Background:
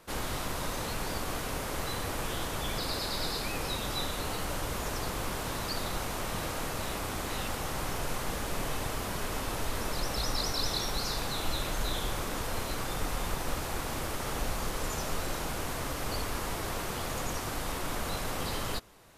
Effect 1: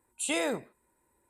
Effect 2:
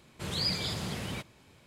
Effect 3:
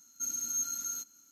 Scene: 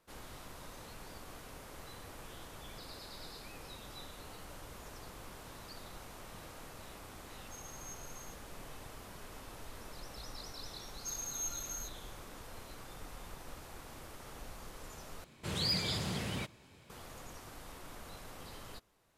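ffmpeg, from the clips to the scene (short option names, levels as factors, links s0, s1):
-filter_complex "[3:a]asplit=2[s0][s1];[0:a]volume=0.168[s2];[2:a]asoftclip=type=tanh:threshold=0.075[s3];[s2]asplit=2[s4][s5];[s4]atrim=end=15.244[s6];[s3]atrim=end=1.66,asetpts=PTS-STARTPTS,volume=0.891[s7];[s5]atrim=start=16.896[s8];[s0]atrim=end=1.31,asetpts=PTS-STARTPTS,volume=0.126,afade=t=in:d=0.004:c=hsin,afade=t=out:st=1.306:d=0.004:c=hsin,adelay=7310[s9];[s1]atrim=end=1.31,asetpts=PTS-STARTPTS,volume=0.473,afade=t=in:d=0.004:c=hsin,afade=t=out:st=1.306:d=0.004:c=hsin,adelay=10850[s10];[s6][s7]acrossfade=d=0.004:c1=hsin:c2=hsin[s11];[s11][s8]acrossfade=d=0.004:c1=hsin:c2=hsin[s12];[s12][s9][s10]amix=inputs=3:normalize=0"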